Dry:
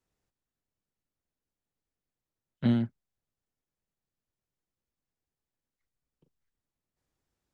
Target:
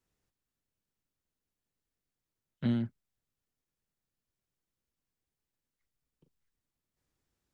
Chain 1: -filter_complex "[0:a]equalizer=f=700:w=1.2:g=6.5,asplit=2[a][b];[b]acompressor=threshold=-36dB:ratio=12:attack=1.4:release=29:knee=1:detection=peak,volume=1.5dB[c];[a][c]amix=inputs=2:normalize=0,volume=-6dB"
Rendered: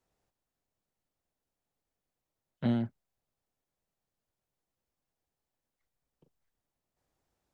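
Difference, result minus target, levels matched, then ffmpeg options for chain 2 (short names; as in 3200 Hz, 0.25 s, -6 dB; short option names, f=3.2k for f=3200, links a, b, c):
500 Hz band +4.0 dB
-filter_complex "[0:a]equalizer=f=700:w=1.2:g=-3,asplit=2[a][b];[b]acompressor=threshold=-36dB:ratio=12:attack=1.4:release=29:knee=1:detection=peak,volume=1.5dB[c];[a][c]amix=inputs=2:normalize=0,volume=-6dB"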